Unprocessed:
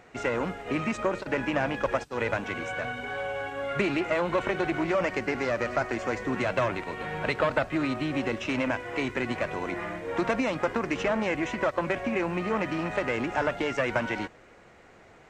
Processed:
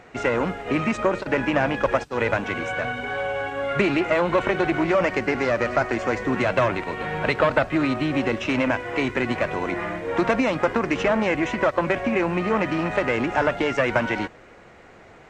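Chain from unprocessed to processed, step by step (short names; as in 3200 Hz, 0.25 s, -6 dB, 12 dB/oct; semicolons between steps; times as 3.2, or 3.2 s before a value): high shelf 6900 Hz -6.5 dB; gain +6 dB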